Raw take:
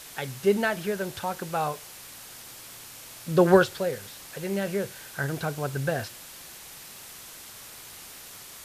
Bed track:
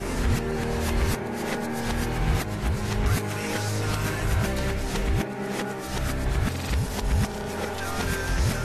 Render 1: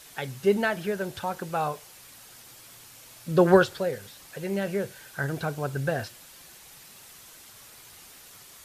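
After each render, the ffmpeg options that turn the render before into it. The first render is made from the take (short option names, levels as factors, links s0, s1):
-af "afftdn=nr=6:nf=-45"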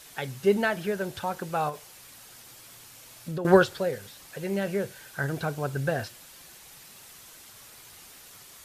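-filter_complex "[0:a]asettb=1/sr,asplit=3[s0][s1][s2];[s0]atrim=end=1.694[s3];[s1]atrim=start=1.69:end=3.45,asetpts=PTS-STARTPTS,afade=t=in:d=0.004:c=qsin,afade=t=out:st=1.756:d=0.004:c=qsin,acompressor=threshold=0.0316:ratio=6:attack=3.2:release=140:knee=1:detection=peak[s4];[s2]atrim=start=3.446[s5];[s3][s4]acrossfade=d=0.004:c1=hsin:c2=qsin[s6];[s6][s5]acrossfade=d=0.004:c1=qsin:c2=hsin"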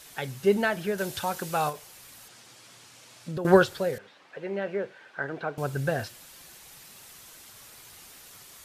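-filter_complex "[0:a]asettb=1/sr,asplit=3[s0][s1][s2];[s0]atrim=end=0.984[s3];[s1]atrim=start=0.98:end=1.73,asetpts=PTS-STARTPTS,afade=t=in:d=0.004:c=qsin,afade=t=out:st=0.746:d=0.004:c=qsin,highshelf=f=2500:g=8.5[s4];[s2]atrim=start=1.726[s5];[s3][s4]acrossfade=d=0.004:c1=hsin:c2=qsin[s6];[s6][s5]acrossfade=d=0.004:c1=qsin:c2=hsin,asettb=1/sr,asplit=3[s7][s8][s9];[s7]atrim=end=2.284[s10];[s8]atrim=start=2.28:end=3.37,asetpts=PTS-STARTPTS,afade=t=in:d=0.004:c=qsin,afade=t=out:st=1.086:d=0.004:c=qsin,highpass=110,lowpass=7700[s11];[s9]atrim=start=3.366[s12];[s10][s11]acrossfade=d=0.004:c1=hsin:c2=qsin[s13];[s13][s12]acrossfade=d=0.004:c1=qsin:c2=hsin,asettb=1/sr,asplit=3[s14][s15][s16];[s14]atrim=end=3.984[s17];[s15]atrim=start=3.98:end=5.58,asetpts=PTS-STARTPTS,afade=t=in:d=0.004:c=qsin,afade=t=out:st=1.596:d=0.004:c=qsin,highpass=290,lowpass=2400[s18];[s16]atrim=start=5.576[s19];[s17][s18]acrossfade=d=0.004:c1=hsin:c2=qsin[s20];[s20][s19]acrossfade=d=0.004:c1=qsin:c2=hsin"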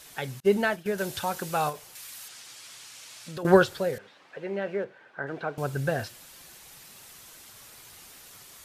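-filter_complex "[0:a]asettb=1/sr,asplit=3[s0][s1][s2];[s0]atrim=end=0.404[s3];[s1]atrim=start=0.4:end=0.86,asetpts=PTS-STARTPTS,afade=t=in:d=0.004:c=qsin,afade=t=out:st=0.456:d=0.004:c=qsin,agate=range=0.0224:threshold=0.0355:ratio=3:release=100:detection=peak[s4];[s2]atrim=start=0.856[s5];[s3][s4]acrossfade=d=0.004:c1=hsin:c2=qsin[s6];[s6][s5]acrossfade=d=0.004:c1=qsin:c2=hsin,asettb=1/sr,asplit=3[s7][s8][s9];[s7]atrim=end=1.954[s10];[s8]atrim=start=1.95:end=3.43,asetpts=PTS-STARTPTS,afade=t=in:d=0.004:c=qsin,afade=t=out:st=1.476:d=0.004:c=qsin,tiltshelf=f=920:g=-7[s11];[s9]atrim=start=3.426[s12];[s10][s11]acrossfade=d=0.004:c1=hsin:c2=qsin[s13];[s13][s12]acrossfade=d=0.004:c1=qsin:c2=hsin,asettb=1/sr,asplit=3[s14][s15][s16];[s14]atrim=end=4.844[s17];[s15]atrim=start=4.84:end=5.27,asetpts=PTS-STARTPTS,afade=t=in:d=0.004:c=qsin,afade=t=out:st=0.426:d=0.004:c=qsin,highshelf=f=2600:g=-11.5[s18];[s16]atrim=start=5.266[s19];[s17][s18]acrossfade=d=0.004:c1=hsin:c2=qsin[s20];[s20][s19]acrossfade=d=0.004:c1=qsin:c2=hsin"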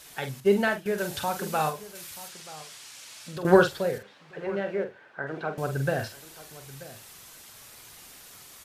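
-filter_complex "[0:a]asplit=2[s0][s1];[s1]adelay=45,volume=0.398[s2];[s0][s2]amix=inputs=2:normalize=0,asplit=2[s3][s4];[s4]adelay=932.9,volume=0.141,highshelf=f=4000:g=-21[s5];[s3][s5]amix=inputs=2:normalize=0"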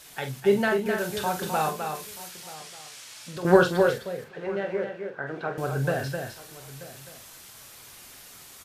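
-filter_complex "[0:a]asplit=2[s0][s1];[s1]adelay=23,volume=0.266[s2];[s0][s2]amix=inputs=2:normalize=0,asplit=2[s3][s4];[s4]aecho=0:1:258:0.501[s5];[s3][s5]amix=inputs=2:normalize=0"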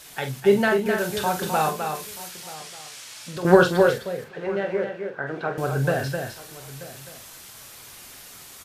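-af "volume=1.5,alimiter=limit=0.794:level=0:latency=1"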